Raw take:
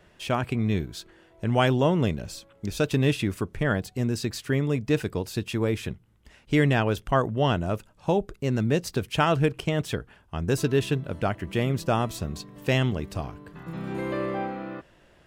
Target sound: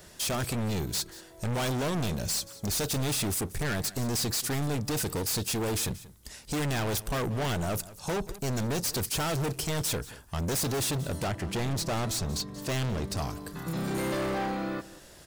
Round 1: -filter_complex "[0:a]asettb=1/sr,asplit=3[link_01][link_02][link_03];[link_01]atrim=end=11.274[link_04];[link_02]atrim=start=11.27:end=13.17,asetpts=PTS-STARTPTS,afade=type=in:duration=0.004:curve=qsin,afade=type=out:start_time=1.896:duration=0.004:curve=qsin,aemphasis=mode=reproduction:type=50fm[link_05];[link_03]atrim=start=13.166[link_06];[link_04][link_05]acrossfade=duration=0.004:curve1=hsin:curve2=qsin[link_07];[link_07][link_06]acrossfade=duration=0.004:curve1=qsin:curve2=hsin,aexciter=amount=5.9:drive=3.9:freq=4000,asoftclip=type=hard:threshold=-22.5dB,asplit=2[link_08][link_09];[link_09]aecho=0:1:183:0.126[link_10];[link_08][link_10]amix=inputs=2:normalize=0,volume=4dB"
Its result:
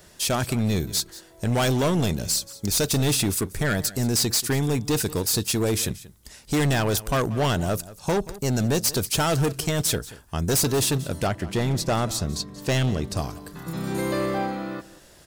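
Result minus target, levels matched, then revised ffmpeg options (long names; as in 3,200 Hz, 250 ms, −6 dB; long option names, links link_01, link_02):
hard clipping: distortion −5 dB
-filter_complex "[0:a]asettb=1/sr,asplit=3[link_01][link_02][link_03];[link_01]atrim=end=11.274[link_04];[link_02]atrim=start=11.27:end=13.17,asetpts=PTS-STARTPTS,afade=type=in:duration=0.004:curve=qsin,afade=type=out:start_time=1.896:duration=0.004:curve=qsin,aemphasis=mode=reproduction:type=50fm[link_05];[link_03]atrim=start=13.166[link_06];[link_04][link_05]acrossfade=duration=0.004:curve1=hsin:curve2=qsin[link_07];[link_07][link_06]acrossfade=duration=0.004:curve1=qsin:curve2=hsin,aexciter=amount=5.9:drive=3.9:freq=4000,asoftclip=type=hard:threshold=-32dB,asplit=2[link_08][link_09];[link_09]aecho=0:1:183:0.126[link_10];[link_08][link_10]amix=inputs=2:normalize=0,volume=4dB"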